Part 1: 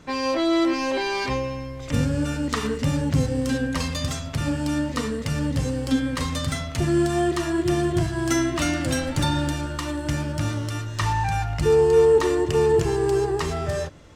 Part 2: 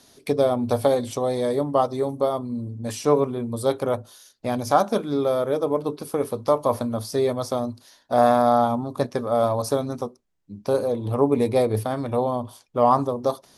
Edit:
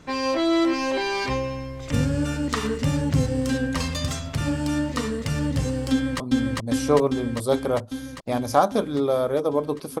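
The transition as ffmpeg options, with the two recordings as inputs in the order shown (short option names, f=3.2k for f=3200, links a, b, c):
-filter_complex "[0:a]apad=whole_dur=10,atrim=end=10,atrim=end=6.202[a];[1:a]atrim=start=2.368:end=6.17[b];[a][b]acrossfade=d=0.004:c1=hsin:c2=hsin,asplit=2[c][d];[d]afade=t=in:st=5.91:d=0.01,afade=t=out:st=6.2:d=0.01,aecho=0:1:400|800|1200|1600|2000|2400|2800|3200|3600|4000|4400|4800:0.944061|0.708046|0.531034|0.398276|0.298707|0.22403|0.168023|0.126017|0.0945127|0.0708845|0.0531634|0.0398725[e];[c][e]amix=inputs=2:normalize=0"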